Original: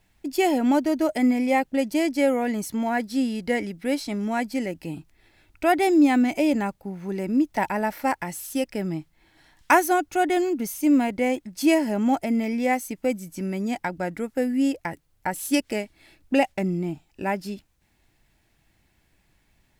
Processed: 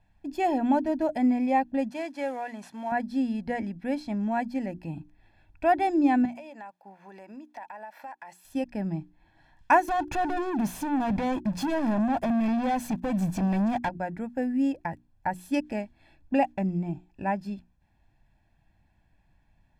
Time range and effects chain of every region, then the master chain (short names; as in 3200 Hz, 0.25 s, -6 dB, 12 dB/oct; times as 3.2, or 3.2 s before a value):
1.9–2.92 CVSD 64 kbps + HPF 830 Hz 6 dB/oct
6.25–8.45 HPF 610 Hz + compressor, threshold -36 dBFS
9.88–13.89 compressor 4:1, threshold -31 dBFS + sample leveller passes 5
whole clip: LPF 1100 Hz 6 dB/oct; notches 60/120/180/240/300/360 Hz; comb 1.2 ms, depth 60%; gain -2 dB